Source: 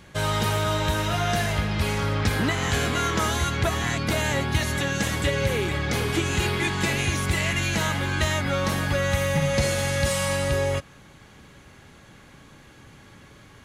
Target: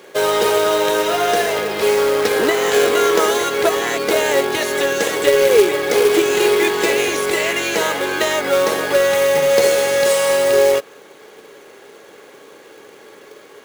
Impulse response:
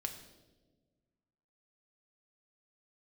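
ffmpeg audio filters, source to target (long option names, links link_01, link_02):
-af "highpass=frequency=430:width_type=q:width=4.9,acrusher=bits=3:mode=log:mix=0:aa=0.000001,volume=5.5dB"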